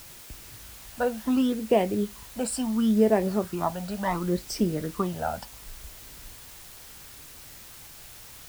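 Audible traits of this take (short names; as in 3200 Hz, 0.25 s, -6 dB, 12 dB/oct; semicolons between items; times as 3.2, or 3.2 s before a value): phasing stages 12, 0.71 Hz, lowest notch 350–1300 Hz; a quantiser's noise floor 8-bit, dither triangular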